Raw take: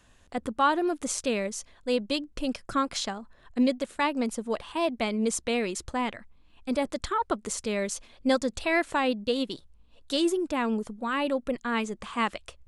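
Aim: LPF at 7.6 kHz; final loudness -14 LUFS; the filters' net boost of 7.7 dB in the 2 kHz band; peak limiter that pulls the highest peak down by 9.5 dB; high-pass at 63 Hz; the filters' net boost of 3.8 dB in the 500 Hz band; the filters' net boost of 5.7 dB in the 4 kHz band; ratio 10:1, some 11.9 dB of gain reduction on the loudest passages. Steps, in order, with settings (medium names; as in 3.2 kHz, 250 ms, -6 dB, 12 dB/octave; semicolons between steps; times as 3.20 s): high-pass 63 Hz; low-pass 7.6 kHz; peaking EQ 500 Hz +4 dB; peaking EQ 2 kHz +8 dB; peaking EQ 4 kHz +4.5 dB; compression 10:1, threshold -27 dBFS; trim +20 dB; peak limiter -3 dBFS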